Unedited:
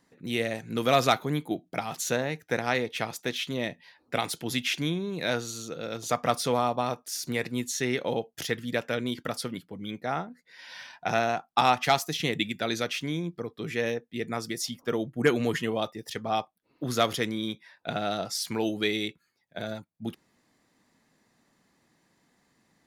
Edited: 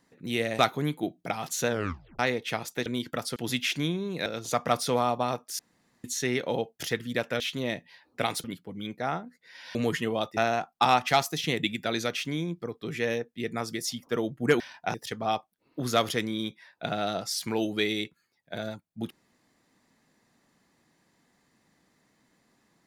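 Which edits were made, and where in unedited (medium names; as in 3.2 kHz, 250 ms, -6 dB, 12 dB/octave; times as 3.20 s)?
0.59–1.07 s: delete
2.16 s: tape stop 0.51 s
3.34–4.38 s: swap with 8.98–9.48 s
5.28–5.84 s: delete
7.17–7.62 s: room tone
10.79–11.13 s: swap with 15.36–15.98 s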